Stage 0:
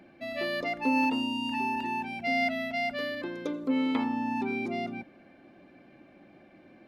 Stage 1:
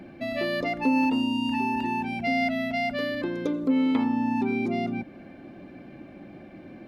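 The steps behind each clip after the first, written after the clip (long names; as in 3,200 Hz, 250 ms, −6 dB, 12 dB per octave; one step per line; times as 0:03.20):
low-shelf EQ 330 Hz +9 dB
downward compressor 1.5 to 1, threshold −38 dBFS, peak gain reduction 7.5 dB
level +6 dB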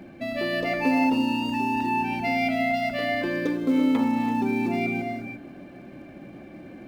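in parallel at −10.5 dB: floating-point word with a short mantissa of 2 bits
on the sum: reverb whose tail is shaped and stops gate 370 ms rising, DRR 4 dB
level −2 dB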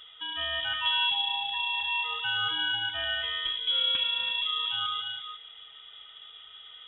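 voice inversion scrambler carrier 3,600 Hz
high-shelf EQ 2,800 Hz −8.5 dB
level −1 dB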